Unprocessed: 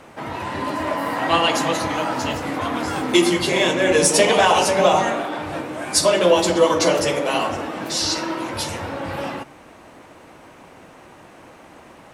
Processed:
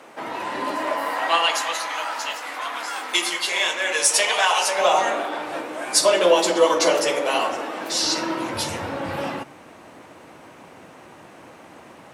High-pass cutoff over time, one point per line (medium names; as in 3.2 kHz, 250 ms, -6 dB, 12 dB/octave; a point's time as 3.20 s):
0.68 s 300 Hz
1.66 s 990 Hz
4.58 s 990 Hz
5.19 s 360 Hz
7.87 s 360 Hz
8.41 s 93 Hz